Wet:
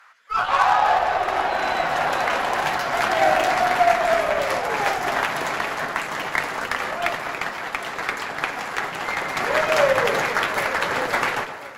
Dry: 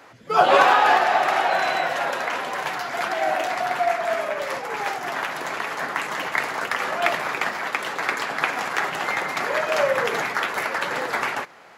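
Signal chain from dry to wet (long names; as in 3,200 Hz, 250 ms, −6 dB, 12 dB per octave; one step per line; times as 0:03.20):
high-pass filter sweep 1,300 Hz → 83 Hz, 0:00.35–0:02.41
on a send: delay that swaps between a low-pass and a high-pass 259 ms, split 1,100 Hz, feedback 79%, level −10.5 dB
on the sum: automatic gain control gain up to 11.5 dB
harmonic generator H 2 −23 dB, 3 −16 dB, 8 −30 dB, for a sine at −0.5 dBFS
soft clipping −5.5 dBFS, distortion −20 dB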